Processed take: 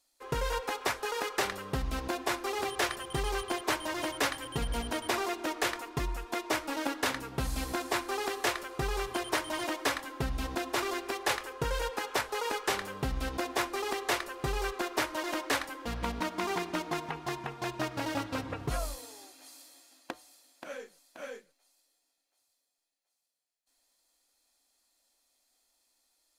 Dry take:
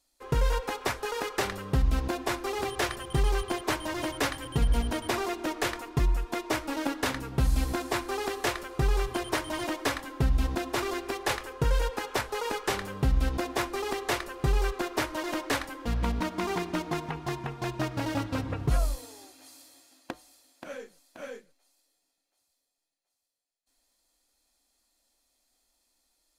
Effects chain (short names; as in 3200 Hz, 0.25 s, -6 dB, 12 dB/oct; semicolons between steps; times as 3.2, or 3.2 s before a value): low shelf 230 Hz -11 dB